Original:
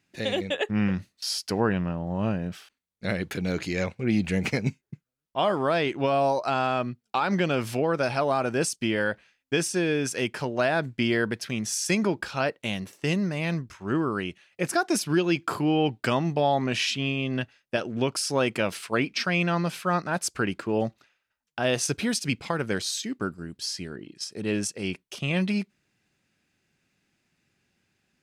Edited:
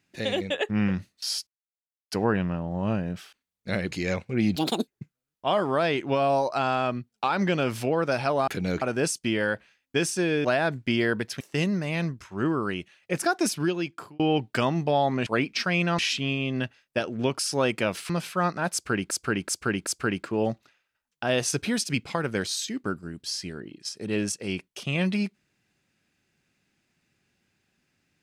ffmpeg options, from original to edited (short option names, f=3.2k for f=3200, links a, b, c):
-filter_complex "[0:a]asplit=16[a][b][c][d][e][f][g][h][i][j][k][l][m][n][o][p];[a]atrim=end=1.47,asetpts=PTS-STARTPTS,afade=t=out:st=1.466:d=0.004:c=hsin,apad=pad_dur=0.64[q];[b]atrim=start=1.47:end=3.282,asetpts=PTS-STARTPTS,afade=t=in:d=0.004:c=hsin[r];[c]atrim=start=3.618:end=4.264[s];[d]atrim=start=4.26:end=4.79,asetpts=PTS-STARTPTS,asetrate=74088,aresample=44100,atrim=end_sample=13912,asetpts=PTS-STARTPTS[t];[e]atrim=start=4.786:end=8.392[u];[f]atrim=start=3.278:end=3.622[v];[g]atrim=start=8.388:end=10.022[w];[h]atrim=start=10.558:end=11.522[x];[i]atrim=start=12.898:end=15.69,asetpts=PTS-STARTPTS,afade=t=out:st=2.082:d=0.71[y];[j]atrim=start=15.69:end=16.762,asetpts=PTS-STARTPTS,afade=t=in:d=0.004:c=hsin[z];[k]atrim=start=18.868:end=19.592[aa];[l]atrim=start=16.758:end=18.872[ab];[m]atrim=start=19.588:end=20.602[ac];[n]atrim=start=20.218:end=20.602[ad];[o]atrim=start=20.218:end=20.602[ae];[p]atrim=start=20.218[af];[q][r]concat=n=2:v=0:a=1[ag];[ag][s]acrossfade=d=0.004:c1=hsin:c2=hsin[ah];[ah][t]acrossfade=d=0.004:c1=hsin:c2=hsin[ai];[ai][u]acrossfade=d=0.004:c1=hsin:c2=hsin[aj];[aj][v]acrossfade=d=0.004:c1=hsin:c2=hsin[ak];[ak][w]acrossfade=d=0.004:c1=hsin:c2=hsin[al];[al][x]acrossfade=d=0.004:c1=hsin:c2=hsin[am];[y][z]concat=n=2:v=0:a=1[an];[am][an]acrossfade=d=0.004:c1=hsin:c2=hsin[ao];[ao][aa]acrossfade=d=0.004:c1=hsin:c2=hsin[ap];[ap][ab]acrossfade=d=0.004:c1=hsin:c2=hsin[aq];[aq][ac]acrossfade=d=0.004:c1=hsin:c2=hsin[ar];[ar][ad]acrossfade=d=0.004:c1=hsin:c2=hsin[as];[as][ae]acrossfade=d=0.004:c1=hsin:c2=hsin[at];[at][af]acrossfade=d=0.004:c1=hsin:c2=hsin"